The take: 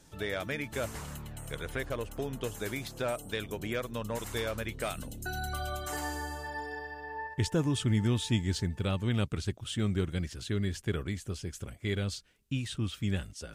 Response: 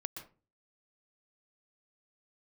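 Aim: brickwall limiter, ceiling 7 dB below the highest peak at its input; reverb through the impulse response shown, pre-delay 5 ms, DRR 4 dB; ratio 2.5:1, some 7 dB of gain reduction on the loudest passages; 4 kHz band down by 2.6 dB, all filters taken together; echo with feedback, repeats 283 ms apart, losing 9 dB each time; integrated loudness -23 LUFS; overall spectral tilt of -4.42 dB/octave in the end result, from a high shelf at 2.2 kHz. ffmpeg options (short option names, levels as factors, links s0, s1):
-filter_complex "[0:a]highshelf=f=2200:g=4,equalizer=f=4000:t=o:g=-7,acompressor=threshold=0.02:ratio=2.5,alimiter=level_in=1.78:limit=0.0631:level=0:latency=1,volume=0.562,aecho=1:1:283|566|849|1132:0.355|0.124|0.0435|0.0152,asplit=2[s0][s1];[1:a]atrim=start_sample=2205,adelay=5[s2];[s1][s2]afir=irnorm=-1:irlink=0,volume=0.75[s3];[s0][s3]amix=inputs=2:normalize=0,volume=5.96"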